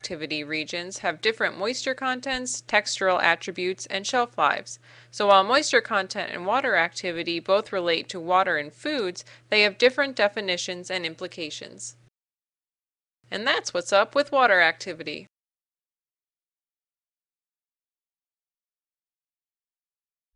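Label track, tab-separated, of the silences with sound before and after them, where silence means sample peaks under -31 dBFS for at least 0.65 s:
11.890000	13.320000	silence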